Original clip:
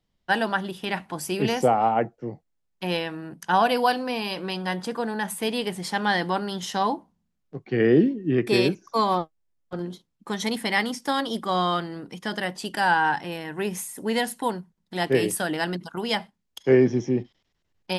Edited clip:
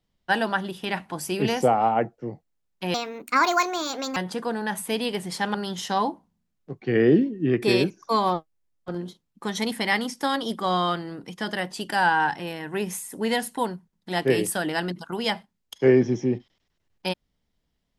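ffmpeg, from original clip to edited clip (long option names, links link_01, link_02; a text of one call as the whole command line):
ffmpeg -i in.wav -filter_complex "[0:a]asplit=4[link_01][link_02][link_03][link_04];[link_01]atrim=end=2.944[link_05];[link_02]atrim=start=2.94:end=4.69,asetpts=PTS-STARTPTS,asetrate=63063,aresample=44100[link_06];[link_03]atrim=start=4.686:end=6.072[link_07];[link_04]atrim=start=6.388[link_08];[link_05][link_06]acrossfade=duration=0.004:curve1=hsin:curve2=hsin[link_09];[link_09][link_07]acrossfade=duration=0.004:curve1=hsin:curve2=hsin[link_10];[link_10][link_08]acrossfade=duration=0.004:curve1=hsin:curve2=hsin" out.wav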